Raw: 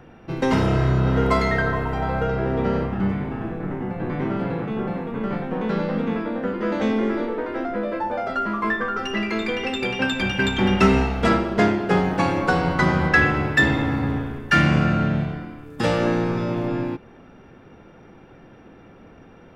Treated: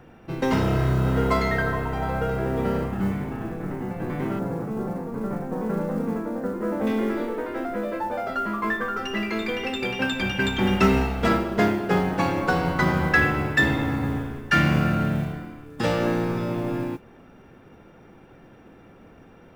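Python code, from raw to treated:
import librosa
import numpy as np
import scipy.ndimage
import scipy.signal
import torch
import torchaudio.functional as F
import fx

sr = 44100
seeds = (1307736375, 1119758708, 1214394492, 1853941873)

y = fx.lowpass(x, sr, hz=1300.0, slope=12, at=(4.39, 6.87))
y = fx.mod_noise(y, sr, seeds[0], snr_db=31)
y = F.gain(torch.from_numpy(y), -2.5).numpy()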